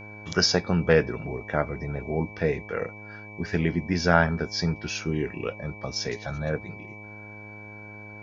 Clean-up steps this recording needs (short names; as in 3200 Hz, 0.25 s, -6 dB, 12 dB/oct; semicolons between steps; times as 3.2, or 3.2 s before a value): de-hum 104.8 Hz, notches 10; notch 2300 Hz, Q 30